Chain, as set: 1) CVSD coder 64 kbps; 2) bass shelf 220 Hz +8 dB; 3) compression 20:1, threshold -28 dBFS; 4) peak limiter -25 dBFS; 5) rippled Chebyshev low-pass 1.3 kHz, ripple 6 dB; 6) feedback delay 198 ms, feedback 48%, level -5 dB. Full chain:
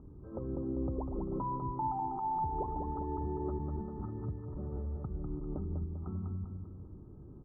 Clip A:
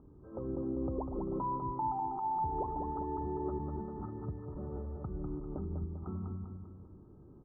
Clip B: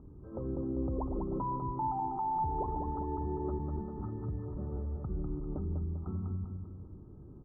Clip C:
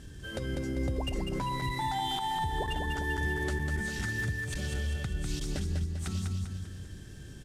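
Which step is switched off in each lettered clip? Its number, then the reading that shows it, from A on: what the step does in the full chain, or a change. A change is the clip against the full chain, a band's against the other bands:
2, 125 Hz band -3.5 dB; 3, mean gain reduction 6.5 dB; 5, 125 Hz band +3.5 dB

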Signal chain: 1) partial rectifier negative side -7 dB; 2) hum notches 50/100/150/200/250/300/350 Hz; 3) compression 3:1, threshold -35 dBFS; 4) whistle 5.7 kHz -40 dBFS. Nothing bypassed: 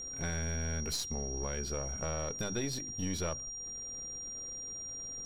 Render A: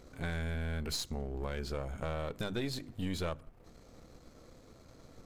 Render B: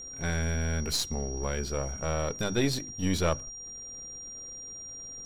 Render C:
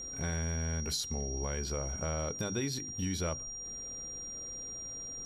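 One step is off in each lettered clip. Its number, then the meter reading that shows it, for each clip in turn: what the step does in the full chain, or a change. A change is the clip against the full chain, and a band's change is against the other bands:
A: 4, 8 kHz band -14.5 dB; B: 3, mean gain reduction 4.0 dB; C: 1, distortion -8 dB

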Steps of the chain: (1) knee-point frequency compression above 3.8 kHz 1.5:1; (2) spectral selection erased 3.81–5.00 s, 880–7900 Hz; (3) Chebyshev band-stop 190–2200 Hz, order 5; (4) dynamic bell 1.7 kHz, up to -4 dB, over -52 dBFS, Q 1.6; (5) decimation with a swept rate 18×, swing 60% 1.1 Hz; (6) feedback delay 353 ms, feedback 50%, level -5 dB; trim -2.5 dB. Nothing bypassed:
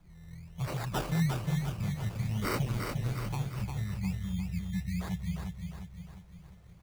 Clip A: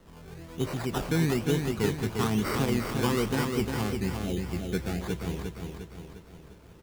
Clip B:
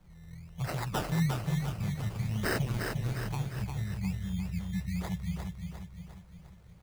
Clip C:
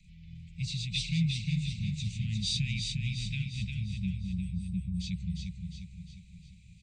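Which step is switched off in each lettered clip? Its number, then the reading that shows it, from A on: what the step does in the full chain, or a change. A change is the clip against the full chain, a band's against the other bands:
3, 125 Hz band -6.5 dB; 1, 2 kHz band +2.5 dB; 5, distortion -5 dB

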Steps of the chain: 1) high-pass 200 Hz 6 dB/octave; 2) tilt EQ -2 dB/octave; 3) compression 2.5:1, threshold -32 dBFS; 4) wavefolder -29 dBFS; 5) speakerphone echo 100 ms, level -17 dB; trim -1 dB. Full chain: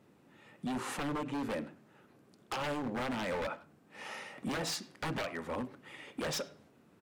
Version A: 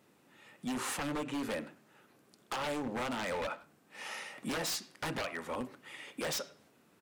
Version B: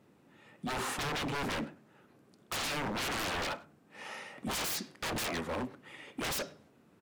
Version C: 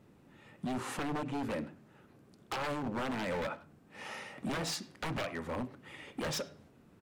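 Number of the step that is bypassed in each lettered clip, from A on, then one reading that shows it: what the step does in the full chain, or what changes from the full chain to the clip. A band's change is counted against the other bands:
2, 125 Hz band -3.5 dB; 3, mean gain reduction 6.5 dB; 1, 125 Hz band +2.0 dB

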